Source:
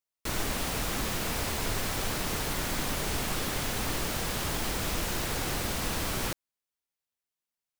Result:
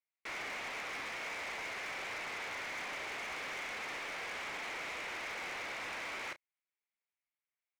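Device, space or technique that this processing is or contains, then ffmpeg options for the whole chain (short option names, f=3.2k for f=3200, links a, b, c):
megaphone: -filter_complex "[0:a]highpass=550,lowpass=2.7k,equalizer=f=2.2k:t=o:w=0.45:g=11,asoftclip=type=hard:threshold=-34.5dB,asplit=2[a][b];[b]adelay=32,volume=-12.5dB[c];[a][c]amix=inputs=2:normalize=0,volume=-4.5dB"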